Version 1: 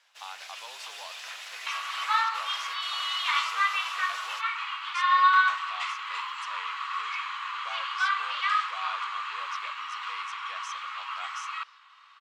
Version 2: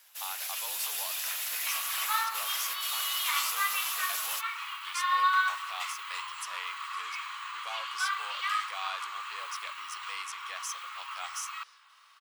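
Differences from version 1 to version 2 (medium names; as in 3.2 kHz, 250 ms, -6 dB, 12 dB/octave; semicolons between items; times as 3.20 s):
second sound -6.0 dB; master: remove distance through air 120 m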